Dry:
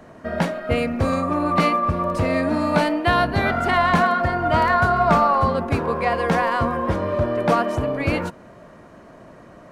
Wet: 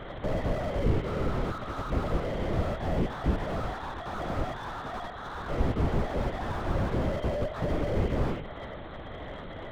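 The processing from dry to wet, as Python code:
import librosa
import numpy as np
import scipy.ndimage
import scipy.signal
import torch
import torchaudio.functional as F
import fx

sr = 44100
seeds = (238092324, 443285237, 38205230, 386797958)

p1 = fx.cvsd(x, sr, bps=32000)
p2 = scipy.signal.sosfilt(scipy.signal.butter(2, 54.0, 'highpass', fs=sr, output='sos'), p1)
p3 = fx.hum_notches(p2, sr, base_hz=60, count=8)
p4 = fx.over_compress(p3, sr, threshold_db=-26.0, ratio=-0.5)
p5 = fx.sample_hold(p4, sr, seeds[0], rate_hz=2600.0, jitter_pct=0)
p6 = p5 + fx.echo_single(p5, sr, ms=72, db=-17.5, dry=0)
p7 = fx.lpc_vocoder(p6, sr, seeds[1], excitation='whisper', order=10)
y = fx.slew_limit(p7, sr, full_power_hz=19.0)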